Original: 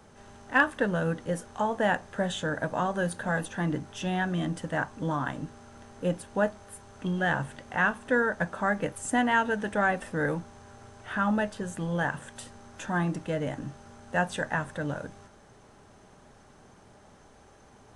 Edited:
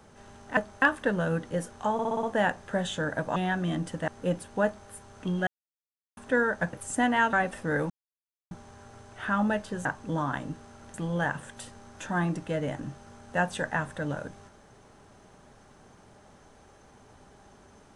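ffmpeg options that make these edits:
-filter_complex "[0:a]asplit=17[a][b][c][d][e][f][g][h][i][j][k][l][m][n][o][p][q];[a]atrim=end=0.572[r];[b]atrim=start=6.438:end=6.692[s];[c]atrim=start=0.568:end=1.742[t];[d]atrim=start=1.678:end=1.742[u];[e]atrim=start=1.678:end=1.742[v];[f]atrim=start=1.678:end=1.742[w];[g]atrim=start=1.678:end=1.742[x];[h]atrim=start=1.678:end=2.812[y];[i]atrim=start=4.058:end=4.782[z];[j]atrim=start=5.868:end=7.26,asetpts=PTS-STARTPTS,afade=t=out:st=1.388:d=0.004:c=hsin[aa];[k]atrim=start=7.26:end=7.96,asetpts=PTS-STARTPTS,volume=0[ab];[l]atrim=start=7.96:end=8.522,asetpts=PTS-STARTPTS,afade=t=in:d=0.004:c=hsin[ac];[m]atrim=start=8.878:end=9.482[ad];[n]atrim=start=9.818:end=10.39,asetpts=PTS-STARTPTS,afade=t=out:st=0.568:d=0.004:c=hsin,apad=pad_dur=0.61[ae];[o]atrim=start=10.39:end=11.732,asetpts=PTS-STARTPTS,afade=t=in:d=0.004:c=hsin[af];[p]atrim=start=4.778:end=5.872[ag];[q]atrim=start=11.728[ah];[r][s]acrossfade=d=0.004:c1=hsin:c2=hsin[ai];[ai][t]acrossfade=d=0.004:c1=hsin:c2=hsin[aj];[aj][u]acrossfade=d=0.004:c1=hsin:c2=hsin[ak];[ak][v]acrossfade=d=0.004:c1=hsin:c2=hsin[al];[al][w]acrossfade=d=0.004:c1=hsin:c2=hsin[am];[am][x]acrossfade=d=0.004:c1=hsin:c2=hsin[an];[an][y]acrossfade=d=0.004:c1=hsin:c2=hsin[ao];[ao][z]acrossfade=d=0.004:c1=hsin:c2=hsin[ap];[aa][ab][ac]concat=n=3:v=0:a=1[aq];[ap][aq]acrossfade=d=0.004:c1=hsin:c2=hsin[ar];[ar][ad]acrossfade=d=0.004:c1=hsin:c2=hsin[as];[ae][af]concat=n=2:v=0:a=1[at];[as][at]acrossfade=d=0.004:c1=hsin:c2=hsin[au];[au][ag]acrossfade=d=0.004:c1=hsin:c2=hsin[av];[av][ah]acrossfade=d=0.004:c1=hsin:c2=hsin"

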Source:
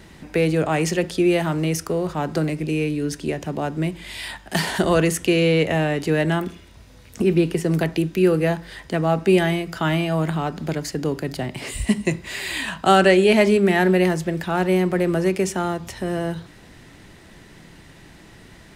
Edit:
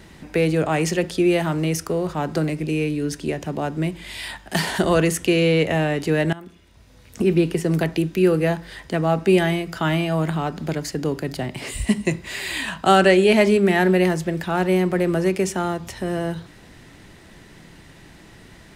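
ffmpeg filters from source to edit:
-filter_complex "[0:a]asplit=2[a][b];[a]atrim=end=6.33,asetpts=PTS-STARTPTS,afade=t=out:st=6.326:d=0.004:c=hsin:silence=0.112202[c];[b]atrim=start=6.33,asetpts=PTS-STARTPTS,afade=t=in:d=0.91:silence=0.112202[d];[c][d]concat=n=2:v=0:a=1"

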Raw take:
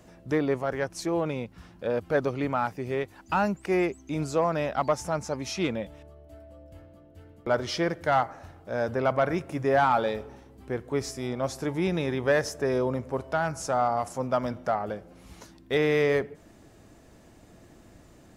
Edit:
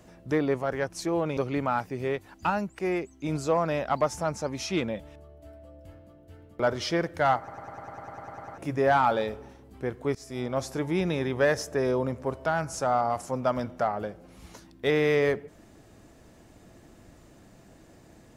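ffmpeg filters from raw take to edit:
-filter_complex "[0:a]asplit=17[a][b][c][d][e][f][g][h][i][j][k][l][m][n][o][p][q];[a]atrim=end=1.372[r];[b]atrim=start=2.238:end=3.372[s];[c]atrim=start=3.368:end=4.112,asetpts=PTS-STARTPTS,volume=-3.5dB[t];[d]atrim=start=4.108:end=8.352[u];[e]atrim=start=8.248:end=8.352[v];[f]atrim=start=8.248:end=8.352[w];[g]atrim=start=8.248:end=8.352[x];[h]atrim=start=8.248:end=8.352[y];[i]atrim=start=8.248:end=8.352[z];[j]atrim=start=8.248:end=8.352[aa];[k]atrim=start=8.248:end=8.352[ab];[l]atrim=start=8.248:end=8.352[ac];[m]atrim=start=8.248:end=8.352[ad];[n]atrim=start=8.248:end=8.352[ae];[o]atrim=start=8.248:end=8.352[af];[p]atrim=start=9.448:end=11.02,asetpts=PTS-STARTPTS,afade=t=out:st=1.568:d=0.004:c=hsin:silence=0.0944061[ag];[q]atrim=start=11.02,asetpts=PTS-STARTPTS,afade=t=in:d=0.26:silence=0.0944061[ah];[r][s]acrossfade=d=0.004:c1=hsin:c2=hsin[ai];[ai][t]acrossfade=d=0.004:c1=hsin:c2=hsin[aj];[aj][u]acrossfade=d=0.004:c1=hsin:c2=hsin[ak];[ak][v]acrossfade=d=0.004:c1=hsin:c2=hsin[al];[al][w]acrossfade=d=0.004:c1=hsin:c2=hsin[am];[am][x]acrossfade=d=0.004:c1=hsin:c2=hsin[an];[an][y]acrossfade=d=0.004:c1=hsin:c2=hsin[ao];[ao][z]acrossfade=d=0.004:c1=hsin:c2=hsin[ap];[ap][aa]acrossfade=d=0.004:c1=hsin:c2=hsin[aq];[aq][ab]acrossfade=d=0.004:c1=hsin:c2=hsin[ar];[ar][ac]acrossfade=d=0.004:c1=hsin:c2=hsin[as];[as][ad]acrossfade=d=0.004:c1=hsin:c2=hsin[at];[at][ae]acrossfade=d=0.004:c1=hsin:c2=hsin[au];[au][af]acrossfade=d=0.004:c1=hsin:c2=hsin[av];[ag][ah]concat=n=2:v=0:a=1[aw];[av][aw]acrossfade=d=0.004:c1=hsin:c2=hsin"

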